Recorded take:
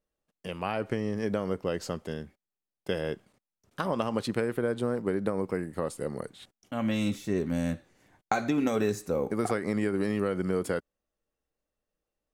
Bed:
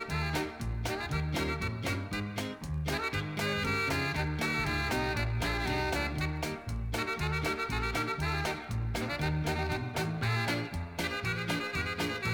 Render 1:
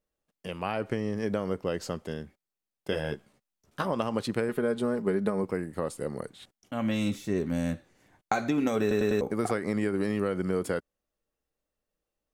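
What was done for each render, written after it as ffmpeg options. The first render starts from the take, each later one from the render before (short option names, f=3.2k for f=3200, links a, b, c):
-filter_complex "[0:a]asettb=1/sr,asplit=3[a][b][c];[a]atrim=end=2.914[d];[b]atrim=start=2.91:end=3.85,asetpts=PTS-STARTPTS,afade=t=in:d=0.004:c=qsin,afade=t=out:st=0.936:d=0.004:c=qsin,asplit=2[e][f];[f]adelay=14,volume=-4.5dB[g];[e][g]amix=inputs=2:normalize=0,atrim=end_sample=41454[h];[c]atrim=start=3.846[i];[d][h]acrossfade=d=0.004:c1=hsin:c2=qsin[j];[j][i]acrossfade=d=0.004:c1=qsin:c2=hsin,asettb=1/sr,asplit=3[k][l][m];[k]atrim=end=4.484[n];[l]atrim=start=4.48:end=5.44,asetpts=PTS-STARTPTS,afade=t=in:d=0.004:c=qsin,afade=t=out:st=0.956:d=0.004:c=qsin,aecho=1:1:4.8:0.54,atrim=end_sample=42336[o];[m]atrim=start=5.436[p];[n][o]acrossfade=d=0.004:c1=hsin:c2=qsin[q];[q][p]acrossfade=d=0.004:c1=qsin:c2=hsin,asplit=5[r][s][t][u][v];[r]atrim=end=8.912[w];[s]atrim=start=8.808:end=8.912[x];[t]atrim=start=8.808:end=8.912[y];[u]atrim=start=8.808:end=8.912[z];[v]atrim=start=9.208[aa];[w][x]acrossfade=d=0.004:c1=hsin:c2=hsin[ab];[ab][y]acrossfade=d=0.004:c1=hsin:c2=hsin[ac];[ac][z]acrossfade=d=0.004:c1=hsin:c2=hsin[ad];[ad][aa]acrossfade=d=0.004:c1=hsin:c2=hsin"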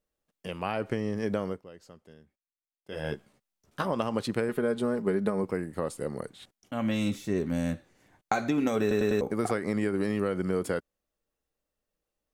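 -filter_complex "[0:a]asplit=3[a][b][c];[a]atrim=end=1.63,asetpts=PTS-STARTPTS,afade=t=out:st=1.44:d=0.19:silence=0.133352[d];[b]atrim=start=1.63:end=2.88,asetpts=PTS-STARTPTS,volume=-17.5dB[e];[c]atrim=start=2.88,asetpts=PTS-STARTPTS,afade=t=in:d=0.19:silence=0.133352[f];[d][e][f]concat=n=3:v=0:a=1"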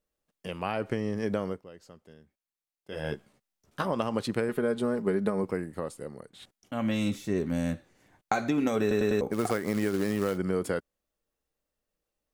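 -filter_complex "[0:a]asplit=3[a][b][c];[a]afade=t=out:st=9.32:d=0.02[d];[b]acrusher=bits=4:mode=log:mix=0:aa=0.000001,afade=t=in:st=9.32:d=0.02,afade=t=out:st=10.36:d=0.02[e];[c]afade=t=in:st=10.36:d=0.02[f];[d][e][f]amix=inputs=3:normalize=0,asplit=2[g][h];[g]atrim=end=6.33,asetpts=PTS-STARTPTS,afade=t=out:st=5.52:d=0.81:silence=0.223872[i];[h]atrim=start=6.33,asetpts=PTS-STARTPTS,afade=t=in:d=0.004:c=hsin:silence=0.223872[j];[i][j]concat=n=2:v=0:a=1"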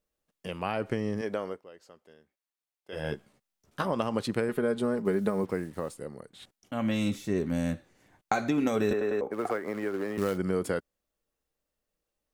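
-filter_complex "[0:a]asettb=1/sr,asplit=3[a][b][c];[a]atrim=end=1.214[d];[b]atrim=start=1.21:end=2.93,asetpts=PTS-STARTPTS,afade=t=in:d=0.004:c=qsin,afade=t=out:st=1.716:d=0.004:c=qsin,bass=f=250:g=-13,treble=f=4k:g=-3[e];[c]atrim=start=2.926[f];[d][e]acrossfade=d=0.004:c1=hsin:c2=qsin[g];[g][f]acrossfade=d=0.004:c1=qsin:c2=hsin,asettb=1/sr,asplit=3[h][i][j];[h]atrim=end=5.054[k];[i]atrim=start=5.05:end=5.94,asetpts=PTS-STARTPTS,afade=t=in:d=0.004:c=qsin,afade=t=out:st=0.886:d=0.004:c=qsin,acrusher=bits=8:mix=0:aa=0.5[l];[j]atrim=start=5.936[m];[k][l]acrossfade=d=0.004:c1=hsin:c2=qsin[n];[n][m]acrossfade=d=0.004:c1=qsin:c2=hsin,asettb=1/sr,asplit=3[o][p][q];[o]atrim=end=8.934[r];[p]atrim=start=8.93:end=10.18,asetpts=PTS-STARTPTS,afade=t=in:d=0.004:c=qsin,afade=t=out:st=1.246:d=0.004:c=qsin,acrossover=split=300 2300:gain=0.2 1 0.224[s][t][u];[s][t][u]amix=inputs=3:normalize=0[v];[q]atrim=start=10.176[w];[r][v]acrossfade=d=0.004:c1=hsin:c2=qsin[x];[x][w]acrossfade=d=0.004:c1=qsin:c2=hsin"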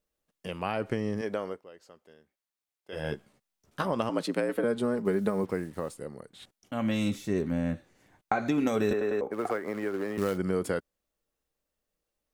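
-filter_complex "[0:a]asettb=1/sr,asplit=3[a][b][c];[a]atrim=end=4.094[d];[b]atrim=start=4.09:end=4.64,asetpts=PTS-STARTPTS,afade=t=in:d=0.004:c=qsin,afade=t=out:st=0.546:d=0.004:c=qsin,afreqshift=64[e];[c]atrim=start=4.636[f];[d][e]acrossfade=d=0.004:c1=hsin:c2=qsin[g];[g][f]acrossfade=d=0.004:c1=qsin:c2=hsin,asettb=1/sr,asplit=3[h][i][j];[h]atrim=end=7.414[k];[i]atrim=start=7.41:end=8.46,asetpts=PTS-STARTPTS,afade=t=in:d=0.004:c=qsin,afade=t=out:st=1.046:d=0.004:c=qsin,acrossover=split=2700[l][m];[m]acompressor=threshold=-57dB:ratio=4:attack=1:release=60[n];[l][n]amix=inputs=2:normalize=0[o];[j]atrim=start=8.456[p];[k][o]acrossfade=d=0.004:c1=hsin:c2=qsin[q];[q][p]acrossfade=d=0.004:c1=qsin:c2=hsin"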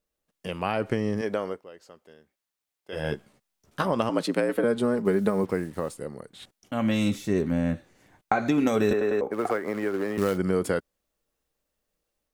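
-af "dynaudnorm=f=240:g=3:m=4dB"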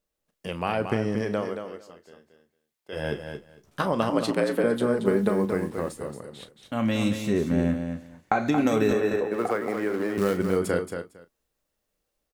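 -filter_complex "[0:a]asplit=2[a][b];[b]adelay=35,volume=-12dB[c];[a][c]amix=inputs=2:normalize=0,asplit=2[d][e];[e]aecho=0:1:227|454:0.422|0.0633[f];[d][f]amix=inputs=2:normalize=0"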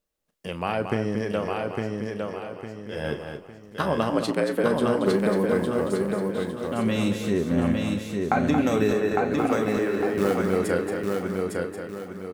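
-af "aecho=1:1:856|1712|2568|3424|4280:0.668|0.254|0.0965|0.0367|0.0139"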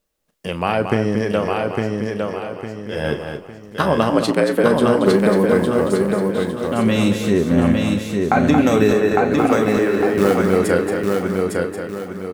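-af "volume=7.5dB,alimiter=limit=-1dB:level=0:latency=1"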